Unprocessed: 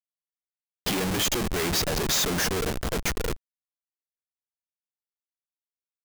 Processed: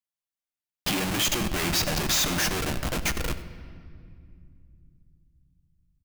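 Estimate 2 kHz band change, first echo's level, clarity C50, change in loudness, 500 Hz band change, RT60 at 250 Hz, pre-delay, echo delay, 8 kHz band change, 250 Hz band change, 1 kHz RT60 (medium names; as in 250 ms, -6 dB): +1.5 dB, -18.0 dB, 12.0 dB, 0.0 dB, -4.0 dB, 3.9 s, 7 ms, 94 ms, +0.5 dB, 0.0 dB, 2.1 s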